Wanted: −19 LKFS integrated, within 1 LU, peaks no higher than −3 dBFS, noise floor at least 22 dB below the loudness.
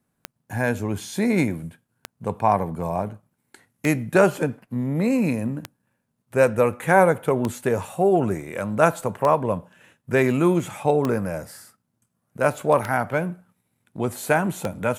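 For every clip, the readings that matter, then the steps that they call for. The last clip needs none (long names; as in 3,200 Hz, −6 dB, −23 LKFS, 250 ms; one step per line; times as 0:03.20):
number of clicks 9; integrated loudness −22.5 LKFS; sample peak −2.0 dBFS; target loudness −19.0 LKFS
→ click removal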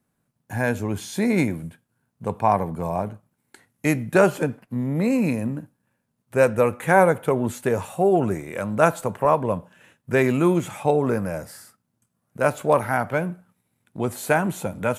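number of clicks 0; integrated loudness −22.5 LKFS; sample peak −2.0 dBFS; target loudness −19.0 LKFS
→ level +3.5 dB
brickwall limiter −3 dBFS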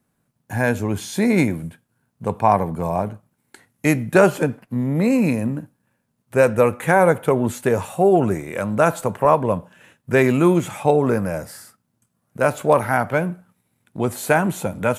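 integrated loudness −19.5 LKFS; sample peak −3.0 dBFS; background noise floor −72 dBFS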